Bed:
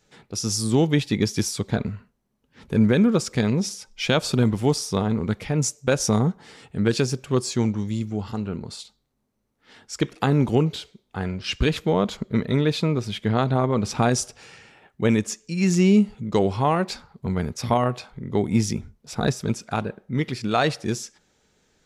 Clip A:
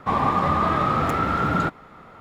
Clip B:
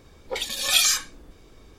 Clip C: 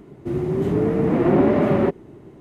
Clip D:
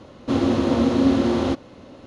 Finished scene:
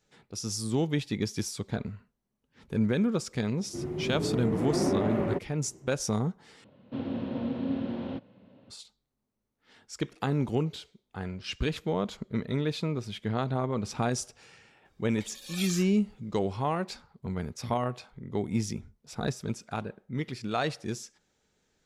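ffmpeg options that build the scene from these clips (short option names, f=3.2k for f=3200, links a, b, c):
-filter_complex "[0:a]volume=-8.5dB[a];[4:a]highpass=110,equalizer=f=120:t=q:w=4:g=6,equalizer=f=190:t=q:w=4:g=8,equalizer=f=350:t=q:w=4:g=-7,equalizer=f=770:t=q:w=4:g=-3,equalizer=f=1.2k:t=q:w=4:g=-9,equalizer=f=2k:t=q:w=4:g=-4,lowpass=f=3.3k:w=0.5412,lowpass=f=3.3k:w=1.3066[b];[a]asplit=2[c][d];[c]atrim=end=6.644[e];[b]atrim=end=2.06,asetpts=PTS-STARTPTS,volume=-13dB[f];[d]atrim=start=8.696[g];[3:a]atrim=end=2.4,asetpts=PTS-STARTPTS,volume=-11dB,afade=t=in:d=0.004:c=hsin,afade=t=out:st=2.396:d=0.004:c=hsin,adelay=3480[h];[2:a]atrim=end=1.78,asetpts=PTS-STARTPTS,volume=-17.5dB,afade=t=in:d=0.004:c=hsin,afade=t=out:st=1.776:d=0.004:c=hsin,adelay=14850[i];[e][f]acrossfade=d=0.004:c1=hsin:c2=hsin[j];[j][g]acrossfade=d=0.004:c1=hsin:c2=hsin[k];[k][h][i]amix=inputs=3:normalize=0"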